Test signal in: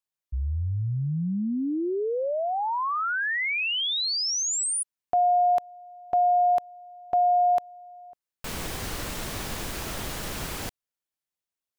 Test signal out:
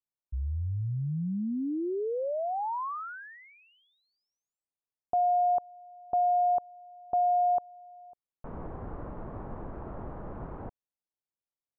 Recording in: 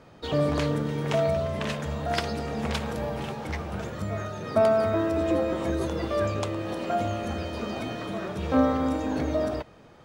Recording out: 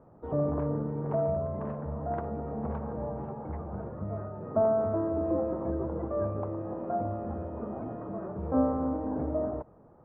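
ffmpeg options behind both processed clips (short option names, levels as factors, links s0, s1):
-af "lowpass=f=1100:w=0.5412,lowpass=f=1100:w=1.3066,volume=0.631"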